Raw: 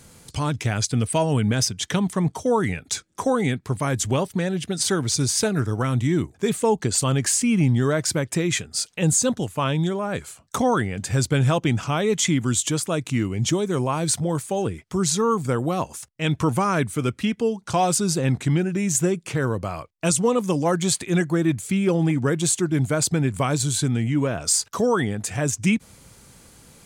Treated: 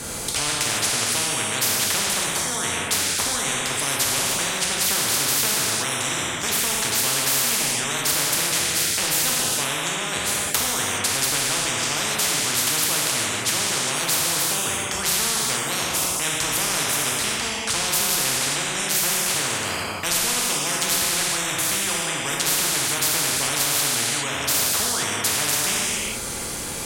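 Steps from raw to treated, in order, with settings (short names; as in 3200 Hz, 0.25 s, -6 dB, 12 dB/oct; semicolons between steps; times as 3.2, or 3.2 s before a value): non-linear reverb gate 0.44 s falling, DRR -3 dB; spectral compressor 10:1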